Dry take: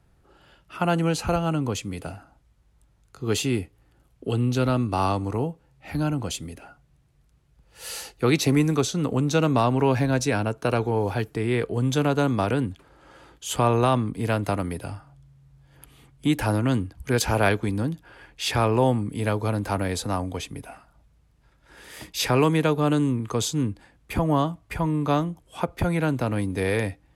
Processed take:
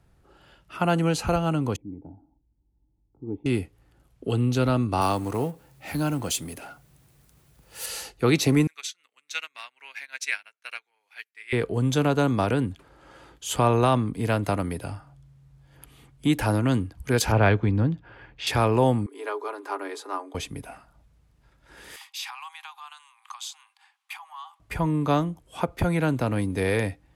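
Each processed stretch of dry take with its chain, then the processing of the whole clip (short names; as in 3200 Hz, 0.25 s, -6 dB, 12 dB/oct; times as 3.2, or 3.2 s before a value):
1.76–3.46 vocal tract filter u + low shelf 86 Hz +10.5 dB
5.01–7.86 G.711 law mismatch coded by mu + HPF 140 Hz 6 dB/oct + high shelf 8700 Hz +11.5 dB
8.67–11.53 resonant high-pass 2100 Hz, resonance Q 3 + upward expander 2.5:1, over -43 dBFS
17.32–18.47 LPF 3100 Hz + bell 110 Hz +6 dB 1.2 oct
19.06–20.35 rippled Chebyshev high-pass 280 Hz, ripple 9 dB + high shelf 7600 Hz -5 dB + comb 4.9 ms, depth 42%
21.96–24.6 compressor 4:1, threshold -28 dBFS + rippled Chebyshev high-pass 770 Hz, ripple 6 dB
whole clip: dry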